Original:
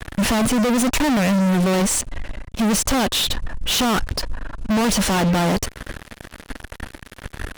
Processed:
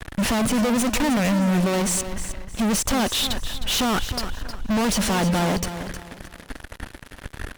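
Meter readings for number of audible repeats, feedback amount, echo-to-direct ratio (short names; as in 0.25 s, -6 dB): 3, 29%, -10.5 dB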